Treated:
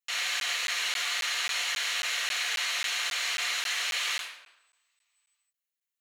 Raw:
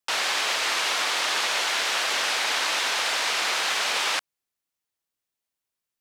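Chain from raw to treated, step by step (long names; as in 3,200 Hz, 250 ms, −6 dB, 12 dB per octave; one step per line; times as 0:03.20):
high-pass filter 72 Hz
first-order pre-emphasis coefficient 0.97
notch filter 800 Hz, Q 12
convolution reverb RT60 0.90 s, pre-delay 3 ms, DRR −0.5 dB
regular buffer underruns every 0.27 s, samples 512, zero, from 0:00.40
level −7.5 dB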